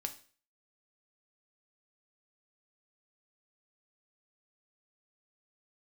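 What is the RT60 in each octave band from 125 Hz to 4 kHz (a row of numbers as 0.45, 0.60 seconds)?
0.45, 0.40, 0.45, 0.40, 0.45, 0.40 seconds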